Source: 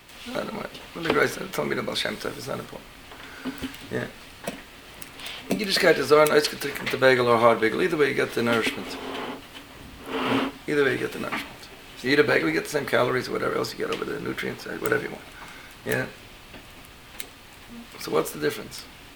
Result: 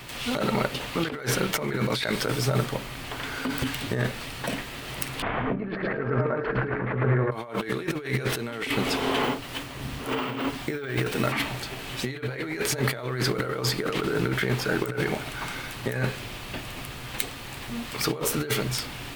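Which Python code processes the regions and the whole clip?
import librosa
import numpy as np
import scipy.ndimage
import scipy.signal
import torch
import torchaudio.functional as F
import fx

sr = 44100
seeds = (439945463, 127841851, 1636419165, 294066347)

y = fx.chain(x, sr, fx.lowpass(hz=1600.0, slope=24),
    fx.over_compress(threshold_db=-30.0, ratio=-1.0),
    fx.echo_feedback(ms=109, feedback_pct=37, wet_db=-5), at=(5.22, 7.32))
y = fx.chain(y, sr, fx.resample_bad(factor=2, down='none', up='hold'),
    fx.tremolo(hz=2.9, depth=0.29), at=(9.23, 11.29))
y = fx.over_compress(y, sr, threshold_db=-32.0, ratio=-1.0)
y = fx.peak_eq(y, sr, hz=130.0, db=12.0, octaves=0.23)
y = F.gain(torch.from_numpy(y), 3.0).numpy()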